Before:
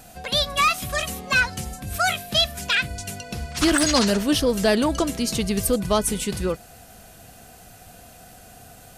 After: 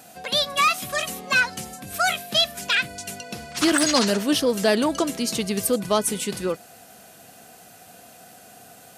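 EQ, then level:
high-pass filter 190 Hz 12 dB per octave
0.0 dB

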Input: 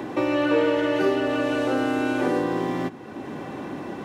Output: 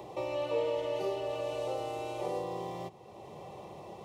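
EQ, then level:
phaser with its sweep stopped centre 650 Hz, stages 4
−7.5 dB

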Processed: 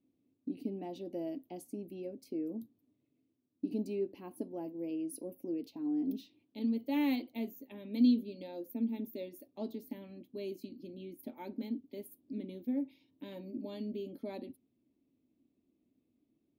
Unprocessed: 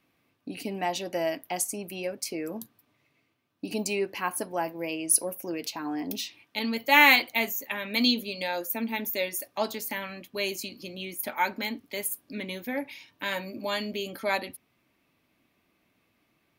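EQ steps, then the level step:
drawn EQ curve 180 Hz 0 dB, 260 Hz +11 dB, 1,500 Hz −24 dB, 3,700 Hz −12 dB, 7,300 Hz −23 dB, 14,000 Hz −13 dB
−8.5 dB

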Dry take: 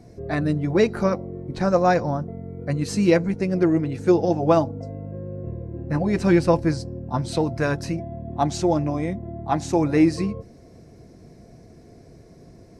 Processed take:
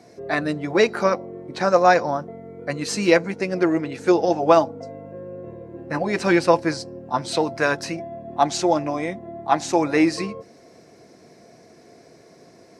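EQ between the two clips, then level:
meter weighting curve A
+5.5 dB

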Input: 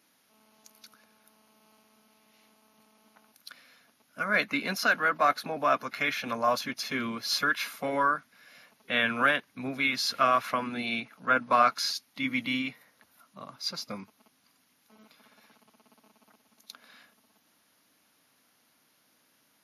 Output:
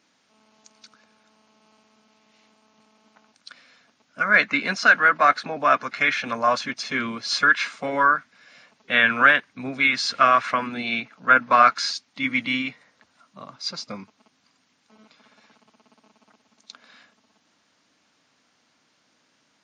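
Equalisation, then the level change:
linear-phase brick-wall low-pass 8,900 Hz
dynamic equaliser 1,700 Hz, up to +7 dB, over −38 dBFS, Q 1.2
+3.5 dB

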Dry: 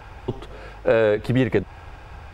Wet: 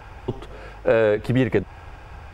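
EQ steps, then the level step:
parametric band 3,900 Hz −3.5 dB 0.32 octaves
0.0 dB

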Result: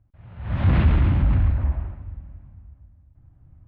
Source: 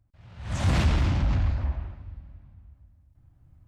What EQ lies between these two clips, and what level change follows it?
low-pass filter 4,600 Hz 24 dB per octave
dynamic equaliser 700 Hz, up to −4 dB, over −43 dBFS, Q 1.2
high-frequency loss of the air 480 metres
+5.5 dB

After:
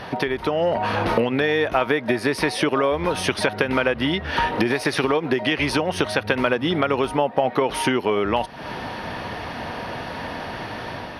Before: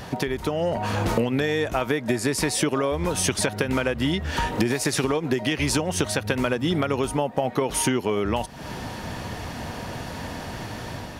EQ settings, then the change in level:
moving average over 6 samples
low-shelf EQ 250 Hz −11.5 dB
+6.5 dB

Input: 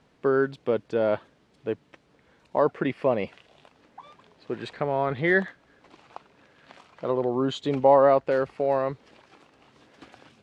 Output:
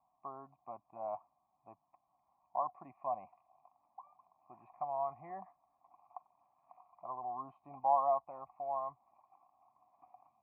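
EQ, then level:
formant resonators in series a
phaser with its sweep stopped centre 2,300 Hz, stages 8
+1.0 dB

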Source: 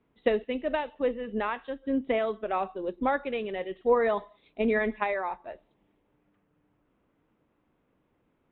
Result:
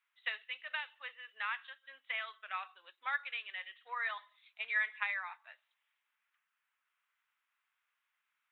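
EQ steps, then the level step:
high-pass filter 1,400 Hz 24 dB per octave
0.0 dB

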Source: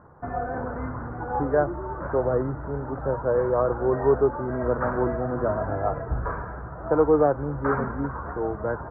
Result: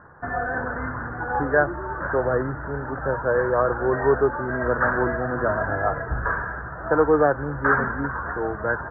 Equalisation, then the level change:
low-pass with resonance 1,700 Hz, resonance Q 6
0.0 dB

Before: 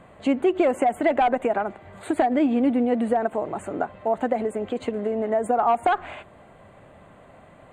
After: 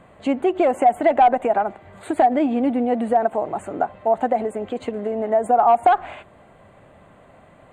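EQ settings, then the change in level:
dynamic equaliser 760 Hz, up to +7 dB, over −35 dBFS, Q 2.2
0.0 dB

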